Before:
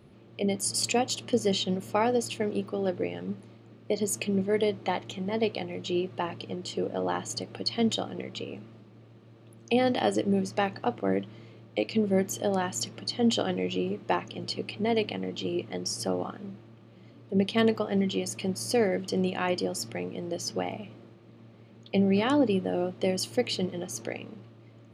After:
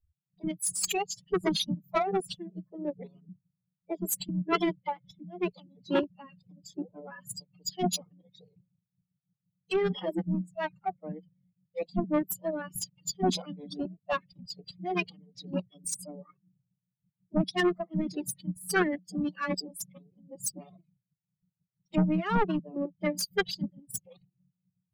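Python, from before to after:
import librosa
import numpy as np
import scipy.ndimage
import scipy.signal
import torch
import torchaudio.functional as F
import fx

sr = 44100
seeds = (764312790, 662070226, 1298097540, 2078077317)

p1 = fx.bin_expand(x, sr, power=3.0)
p2 = fx.level_steps(p1, sr, step_db=14)
p3 = p1 + (p2 * 10.0 ** (0.0 / 20.0))
p4 = fx.rotary(p3, sr, hz=5.5)
p5 = 10.0 ** (-26.0 / 20.0) * np.tanh(p4 / 10.0 ** (-26.0 / 20.0))
p6 = fx.pitch_keep_formants(p5, sr, semitones=8.0)
y = p6 * 10.0 ** (6.5 / 20.0)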